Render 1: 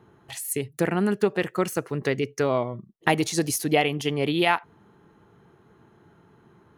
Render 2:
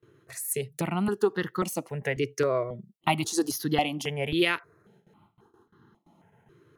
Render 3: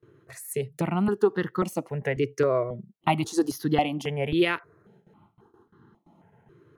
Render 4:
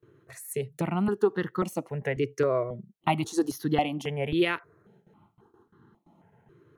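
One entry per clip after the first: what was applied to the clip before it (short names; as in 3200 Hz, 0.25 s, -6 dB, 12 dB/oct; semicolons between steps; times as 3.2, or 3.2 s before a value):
HPF 97 Hz 12 dB/oct; gate with hold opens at -47 dBFS; step phaser 3.7 Hz 210–2400 Hz
high shelf 2500 Hz -10 dB; gain +3 dB
notch 4900 Hz, Q 14; gain -2 dB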